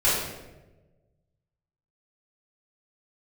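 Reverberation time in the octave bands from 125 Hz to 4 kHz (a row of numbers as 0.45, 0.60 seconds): 1.9, 1.4, 1.4, 0.95, 0.85, 0.70 seconds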